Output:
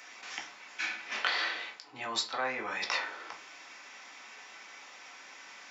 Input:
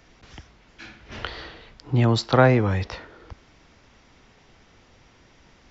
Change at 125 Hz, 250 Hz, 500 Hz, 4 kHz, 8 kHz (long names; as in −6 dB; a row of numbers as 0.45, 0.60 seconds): −40.0 dB, −24.0 dB, −18.0 dB, 0.0 dB, can't be measured